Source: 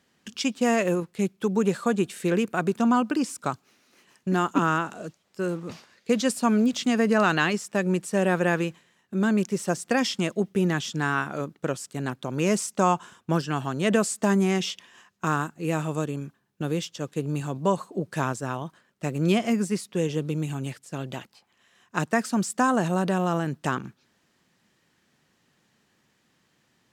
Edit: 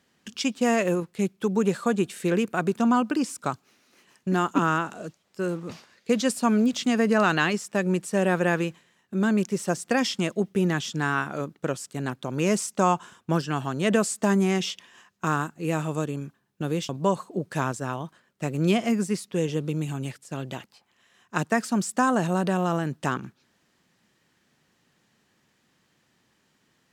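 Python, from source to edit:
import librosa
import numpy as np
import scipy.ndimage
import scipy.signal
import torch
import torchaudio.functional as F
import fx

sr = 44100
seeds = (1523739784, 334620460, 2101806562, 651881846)

y = fx.edit(x, sr, fx.cut(start_s=16.89, length_s=0.61), tone=tone)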